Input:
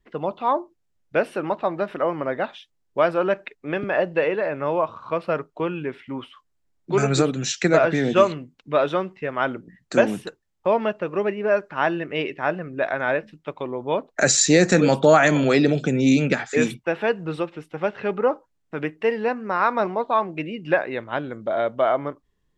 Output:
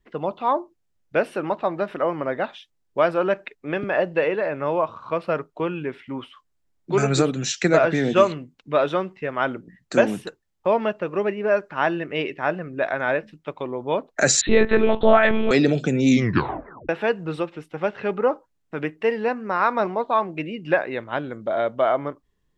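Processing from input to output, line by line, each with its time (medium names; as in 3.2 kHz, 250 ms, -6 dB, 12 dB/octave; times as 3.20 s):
14.41–15.51 s: monotone LPC vocoder at 8 kHz 220 Hz
16.10 s: tape stop 0.79 s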